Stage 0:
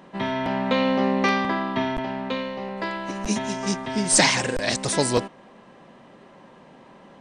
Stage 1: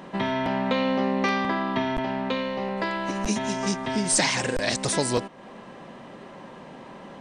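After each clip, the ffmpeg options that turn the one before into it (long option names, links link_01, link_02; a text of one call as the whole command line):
ffmpeg -i in.wav -af "acompressor=threshold=-34dB:ratio=2,volume=6dB" out.wav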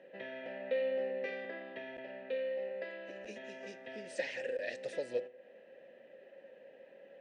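ffmpeg -i in.wav -filter_complex "[0:a]flanger=delay=7.9:depth=1.3:regen=90:speed=0.37:shape=triangular,asplit=3[link_01][link_02][link_03];[link_01]bandpass=frequency=530:width_type=q:width=8,volume=0dB[link_04];[link_02]bandpass=frequency=1840:width_type=q:width=8,volume=-6dB[link_05];[link_03]bandpass=frequency=2480:width_type=q:width=8,volume=-9dB[link_06];[link_04][link_05][link_06]amix=inputs=3:normalize=0,flanger=delay=0.1:depth=4.5:regen=-80:speed=1:shape=triangular,volume=5dB" out.wav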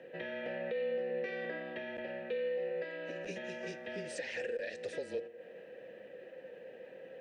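ffmpeg -i in.wav -af "areverse,acompressor=mode=upward:threshold=-51dB:ratio=2.5,areverse,alimiter=level_in=10dB:limit=-24dB:level=0:latency=1:release=234,volume=-10dB,afreqshift=-27,volume=5dB" out.wav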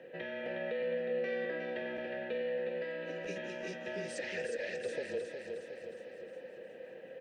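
ffmpeg -i in.wav -af "aecho=1:1:362|724|1086|1448|1810|2172|2534:0.531|0.292|0.161|0.0883|0.0486|0.0267|0.0147" out.wav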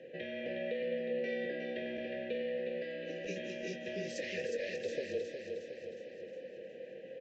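ffmpeg -i in.wav -filter_complex "[0:a]asplit=2[link_01][link_02];[link_02]adelay=21,volume=-11dB[link_03];[link_01][link_03]amix=inputs=2:normalize=0,aresample=16000,aresample=44100,asuperstop=centerf=1100:order=4:qfactor=0.82,volume=1.5dB" out.wav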